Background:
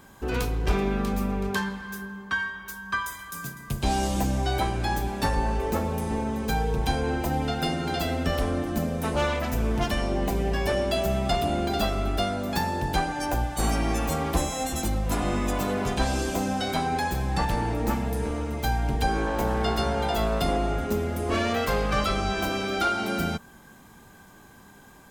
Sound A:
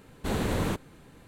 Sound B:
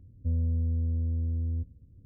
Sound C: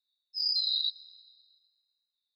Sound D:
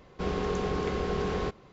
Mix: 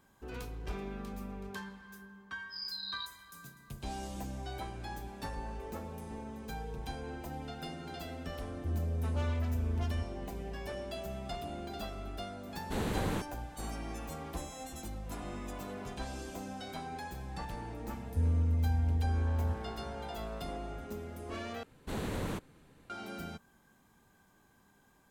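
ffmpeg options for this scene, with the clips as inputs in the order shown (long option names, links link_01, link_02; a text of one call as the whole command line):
ffmpeg -i bed.wav -i cue0.wav -i cue1.wav -i cue2.wav -filter_complex "[2:a]asplit=2[link_01][link_02];[1:a]asplit=2[link_03][link_04];[0:a]volume=-15.5dB[link_05];[3:a]acrusher=bits=10:mix=0:aa=0.000001[link_06];[link_01]asoftclip=type=tanh:threshold=-30dB[link_07];[link_04]asoftclip=type=hard:threshold=-20.5dB[link_08];[link_05]asplit=2[link_09][link_10];[link_09]atrim=end=21.634[link_11];[link_08]atrim=end=1.27,asetpts=PTS-STARTPTS,volume=-8dB[link_12];[link_10]atrim=start=22.896[link_13];[link_06]atrim=end=2.35,asetpts=PTS-STARTPTS,volume=-12dB,afade=type=in:duration=0.004:curve=hsin,afade=type=out:start_time=2.346:duration=0.004:curve=hsin,adelay=2160[link_14];[link_07]atrim=end=2.05,asetpts=PTS-STARTPTS,volume=-0.5dB,afade=type=in:duration=0.004:curve=hsin,afade=type=out:start_time=2.046:duration=0.004:curve=hsin,adelay=8400[link_15];[link_03]atrim=end=1.27,asetpts=PTS-STARTPTS,volume=-5.5dB,afade=type=in:duration=0.004:curve=hsin,afade=type=out:start_time=1.266:duration=0.004:curve=hsin,adelay=12460[link_16];[link_02]atrim=end=2.05,asetpts=PTS-STARTPTS,volume=-1.5dB,afade=type=in:duration=0.004:curve=hsin,afade=type=out:start_time=2.046:duration=0.004:curve=hsin,adelay=17910[link_17];[link_11][link_12]acrossfade=duration=0.004:curve1=hsin:curve2=hsin[link_18];[link_18][link_13]acrossfade=duration=0.004:curve1=hsin:curve2=hsin[link_19];[link_19][link_14][link_15][link_16][link_17]amix=inputs=5:normalize=0" out.wav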